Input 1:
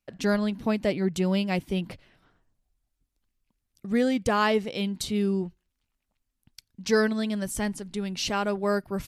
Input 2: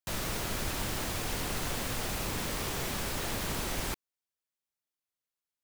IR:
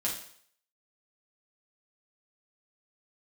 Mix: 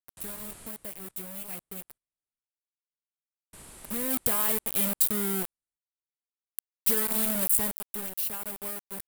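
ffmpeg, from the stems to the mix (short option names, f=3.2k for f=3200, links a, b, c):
-filter_complex "[0:a]acompressor=threshold=-25dB:ratio=12,acrusher=bits=4:mix=0:aa=0.000001,volume=-4.5dB,afade=t=in:st=3.71:d=0.47:silence=0.251189,afade=t=out:st=7.46:d=0.7:silence=0.375837[a];[1:a]lowpass=f=9.4k:w=0.5412,lowpass=f=9.4k:w=1.3066,adelay=100,volume=-17dB,asplit=3[b][c][d];[b]atrim=end=0.68,asetpts=PTS-STARTPTS,afade=t=out:st=0.676:d=0.004:c=hsin[e];[c]atrim=start=0.68:end=3.53,asetpts=PTS-STARTPTS,volume=0[f];[d]atrim=start=3.53,asetpts=PTS-STARTPTS,afade=t=in:d=0.004:c=hsin[g];[e][f][g]concat=n=3:v=0:a=1,asplit=2[h][i];[i]volume=-15.5dB,aecho=0:1:433|866|1299|1732:1|0.23|0.0529|0.0122[j];[a][h][j]amix=inputs=3:normalize=0,aexciter=amount=7.8:drive=6:freq=8.4k"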